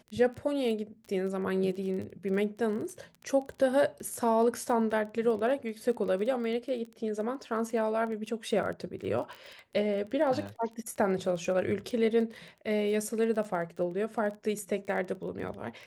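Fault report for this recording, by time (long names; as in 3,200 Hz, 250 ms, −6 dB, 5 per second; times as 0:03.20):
surface crackle 18 per second −37 dBFS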